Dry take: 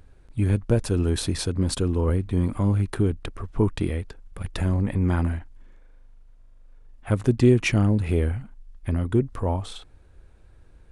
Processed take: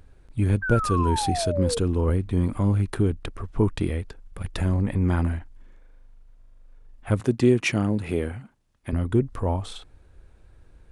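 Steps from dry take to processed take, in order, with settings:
0:00.62–0:01.79: sound drawn into the spectrogram fall 450–1,600 Hz −28 dBFS
0:07.20–0:08.93: Bessel high-pass filter 160 Hz, order 2

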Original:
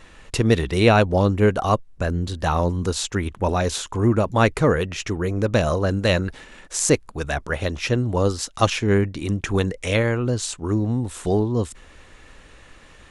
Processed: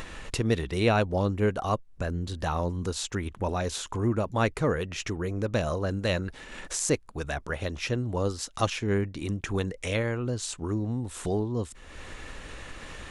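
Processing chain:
upward compression, threshold −19 dBFS
level −8 dB

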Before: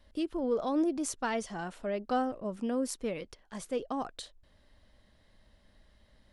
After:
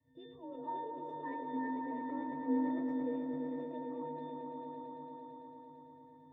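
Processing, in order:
pitch shifter swept by a sawtooth +3 semitones, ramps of 956 ms
Savitzky-Golay smoothing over 25 samples
parametric band 1,300 Hz −4.5 dB 0.73 octaves
notch filter 500 Hz, Q 12
resonances in every octave A, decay 0.76 s
frequency shifter +40 Hz
echo that builds up and dies away 112 ms, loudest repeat 5, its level −8 dB
level that may fall only so fast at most 27 dB per second
level +15 dB

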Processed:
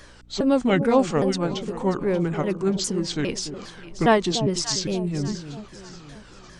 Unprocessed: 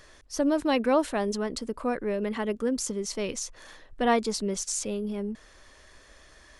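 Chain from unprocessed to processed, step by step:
pitch shifter swept by a sawtooth −7 semitones, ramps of 406 ms
mains hum 60 Hz, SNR 28 dB
delay that swaps between a low-pass and a high-pass 292 ms, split 840 Hz, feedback 63%, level −10.5 dB
level +6 dB

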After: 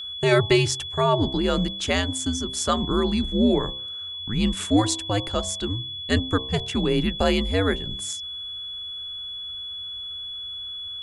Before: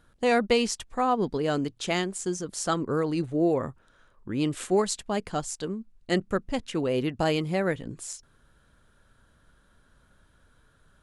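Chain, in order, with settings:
frequency shifter −100 Hz
hum removal 65.08 Hz, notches 17
steady tone 3,400 Hz −36 dBFS
level +4.5 dB

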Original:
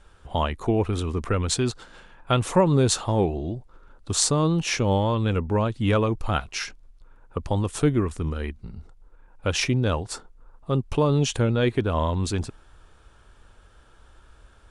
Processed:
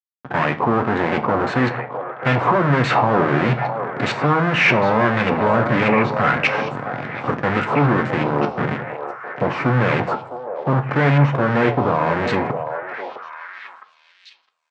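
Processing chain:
each half-wave held at its own peak
source passing by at 0:05.80, 6 m/s, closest 2.6 metres
notch filter 3,300 Hz
in parallel at +1.5 dB: downward compressor, threshold −43 dBFS, peak gain reduction 25.5 dB
on the sum: fuzz pedal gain 50 dB, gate −52 dBFS
auto-filter low-pass saw up 1.7 Hz 880–2,400 Hz
Chebyshev band-pass filter 120–8,100 Hz, order 4
double-tracking delay 14 ms −12 dB
echo through a band-pass that steps 660 ms, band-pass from 630 Hz, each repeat 1.4 octaves, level −4.5 dB
convolution reverb RT60 0.45 s, pre-delay 4 ms, DRR 8 dB
level −3.5 dB

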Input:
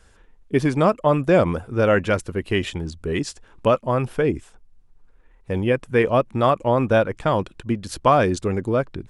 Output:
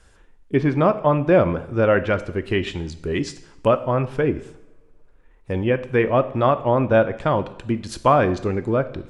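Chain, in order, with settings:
treble cut that deepens with the level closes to 2,900 Hz, closed at −16 dBFS
coupled-rooms reverb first 0.72 s, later 2.7 s, from −25 dB, DRR 11 dB

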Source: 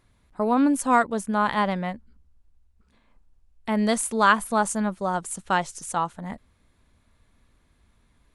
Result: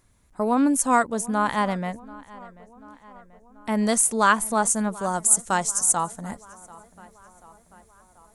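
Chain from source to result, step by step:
high shelf with overshoot 5,100 Hz +7 dB, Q 1.5, from 0:04.93 +14 dB
tape delay 737 ms, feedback 64%, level −20 dB, low-pass 3,400 Hz

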